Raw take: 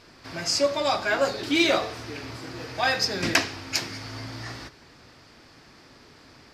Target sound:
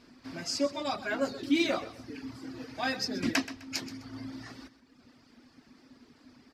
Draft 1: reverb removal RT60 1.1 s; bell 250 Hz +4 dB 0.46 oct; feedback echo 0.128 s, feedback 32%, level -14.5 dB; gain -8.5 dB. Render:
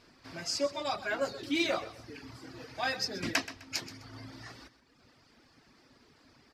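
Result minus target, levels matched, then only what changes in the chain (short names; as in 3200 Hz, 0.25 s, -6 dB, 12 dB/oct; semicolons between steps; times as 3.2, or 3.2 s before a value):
250 Hz band -6.0 dB
change: bell 250 Hz +16 dB 0.46 oct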